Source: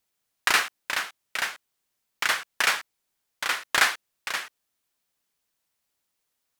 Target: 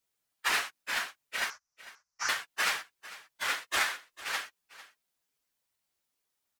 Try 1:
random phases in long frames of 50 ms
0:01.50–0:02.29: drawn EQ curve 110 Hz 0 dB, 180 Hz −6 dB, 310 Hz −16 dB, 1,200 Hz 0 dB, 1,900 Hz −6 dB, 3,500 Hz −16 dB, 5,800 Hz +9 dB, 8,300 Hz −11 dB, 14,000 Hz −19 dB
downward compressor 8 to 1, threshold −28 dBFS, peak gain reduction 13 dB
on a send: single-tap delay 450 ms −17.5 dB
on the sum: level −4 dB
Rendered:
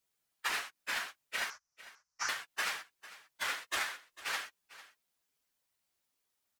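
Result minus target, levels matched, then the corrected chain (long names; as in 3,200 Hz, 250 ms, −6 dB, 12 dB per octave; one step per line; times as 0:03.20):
downward compressor: peak gain reduction +7 dB
random phases in long frames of 50 ms
0:01.50–0:02.29: drawn EQ curve 110 Hz 0 dB, 180 Hz −6 dB, 310 Hz −16 dB, 1,200 Hz 0 dB, 1,900 Hz −6 dB, 3,500 Hz −16 dB, 5,800 Hz +9 dB, 8,300 Hz −11 dB, 14,000 Hz −19 dB
downward compressor 8 to 1, threshold −20 dBFS, peak gain reduction 6 dB
on a send: single-tap delay 450 ms −17.5 dB
on the sum: level −4 dB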